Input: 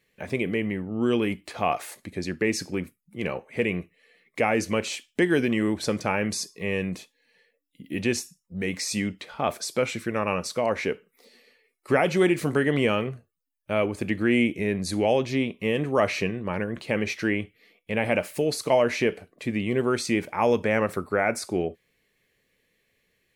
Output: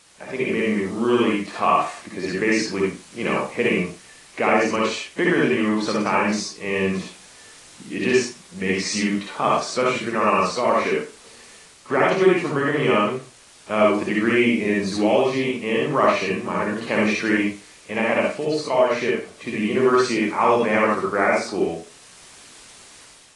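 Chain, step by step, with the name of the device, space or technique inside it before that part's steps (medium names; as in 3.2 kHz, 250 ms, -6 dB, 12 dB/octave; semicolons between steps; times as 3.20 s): filmed off a television (band-pass 190–6400 Hz; peaking EQ 1.1 kHz +8.5 dB 0.55 oct; reverberation RT60 0.35 s, pre-delay 52 ms, DRR -3 dB; white noise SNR 25 dB; level rider gain up to 7.5 dB; trim -4.5 dB; AAC 32 kbps 22.05 kHz)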